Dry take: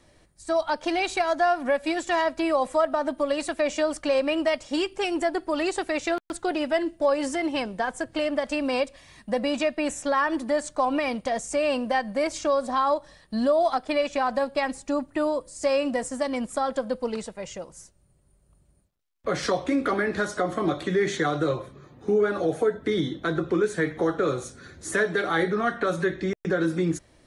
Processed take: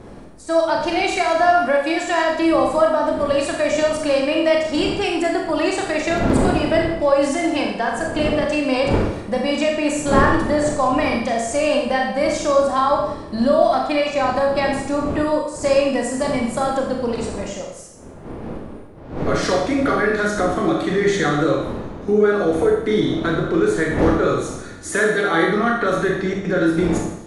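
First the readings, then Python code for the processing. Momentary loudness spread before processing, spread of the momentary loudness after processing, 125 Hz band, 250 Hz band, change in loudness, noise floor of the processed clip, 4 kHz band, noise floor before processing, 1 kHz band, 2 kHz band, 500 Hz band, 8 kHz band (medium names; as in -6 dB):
6 LU, 6 LU, +10.0 dB, +7.5 dB, +7.0 dB, -37 dBFS, +6.5 dB, -62 dBFS, +6.5 dB, +6.5 dB, +7.0 dB, +6.5 dB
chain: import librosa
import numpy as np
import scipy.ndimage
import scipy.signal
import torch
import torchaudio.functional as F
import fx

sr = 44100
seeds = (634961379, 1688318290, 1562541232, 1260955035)

y = fx.dmg_wind(x, sr, seeds[0], corner_hz=410.0, level_db=-35.0)
y = fx.rev_schroeder(y, sr, rt60_s=0.78, comb_ms=27, drr_db=0.0)
y = y * librosa.db_to_amplitude(3.5)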